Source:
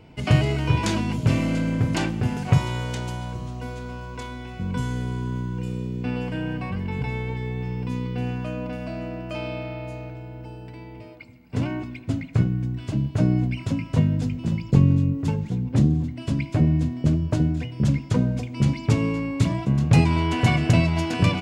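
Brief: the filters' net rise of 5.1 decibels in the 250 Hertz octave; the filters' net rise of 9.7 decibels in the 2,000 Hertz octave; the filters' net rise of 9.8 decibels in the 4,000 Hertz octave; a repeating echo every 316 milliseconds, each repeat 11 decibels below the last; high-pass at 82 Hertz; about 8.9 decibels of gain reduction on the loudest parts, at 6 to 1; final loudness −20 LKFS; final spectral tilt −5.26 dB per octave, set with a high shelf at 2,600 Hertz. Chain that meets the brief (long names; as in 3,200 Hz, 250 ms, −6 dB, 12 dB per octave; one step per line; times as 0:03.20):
high-pass filter 82 Hz
parametric band 250 Hz +7 dB
parametric band 2,000 Hz +7 dB
high-shelf EQ 2,600 Hz +7.5 dB
parametric band 4,000 Hz +4 dB
downward compressor 6 to 1, threshold −18 dBFS
repeating echo 316 ms, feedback 28%, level −11 dB
level +4 dB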